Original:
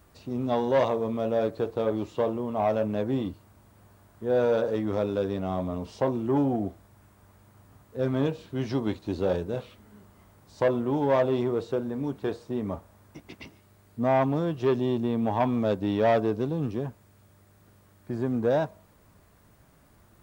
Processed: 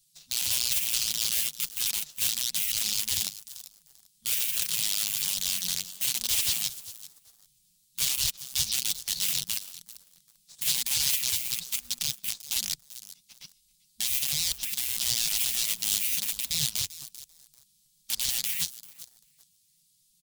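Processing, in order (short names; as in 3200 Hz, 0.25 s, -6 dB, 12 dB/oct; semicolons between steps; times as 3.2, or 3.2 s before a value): downsampling 32000 Hz; in parallel at +3 dB: limiter -22.5 dBFS, peak gain reduction 9 dB; on the sum: wrapped overs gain 16.5 dB; inverse Chebyshev band-stop 340–1200 Hz, stop band 70 dB; spectral gate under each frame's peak -15 dB weak; on a send: feedback echo 0.392 s, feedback 28%, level -16.5 dB; on the sum: flange 1.1 Hz, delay 1.9 ms, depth 9.5 ms, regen +33%; sample leveller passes 2; gain +4.5 dB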